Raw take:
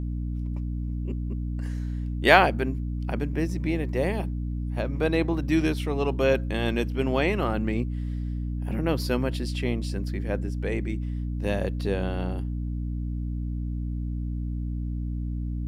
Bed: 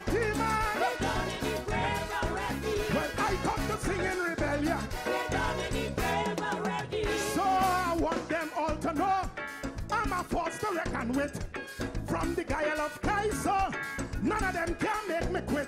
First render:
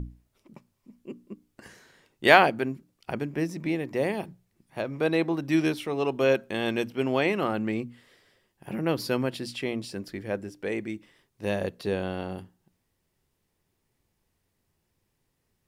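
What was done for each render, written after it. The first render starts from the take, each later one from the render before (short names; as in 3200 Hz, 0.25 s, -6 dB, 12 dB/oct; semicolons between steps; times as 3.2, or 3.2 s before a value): notches 60/120/180/240/300 Hz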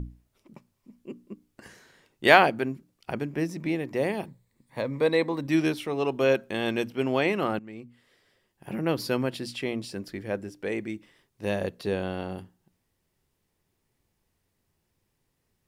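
4.27–5.47 ripple EQ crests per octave 1, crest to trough 9 dB; 7.59–8.69 fade in, from -18.5 dB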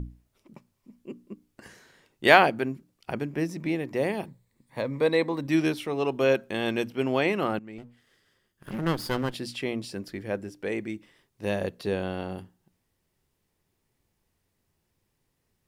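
7.78–9.34 minimum comb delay 0.62 ms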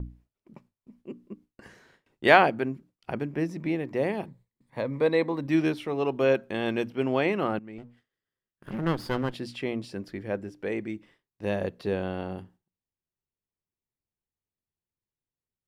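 gate with hold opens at -47 dBFS; high shelf 4500 Hz -11 dB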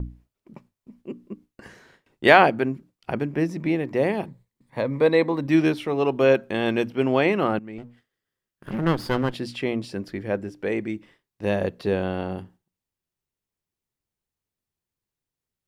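gain +5 dB; limiter -2 dBFS, peak gain reduction 3 dB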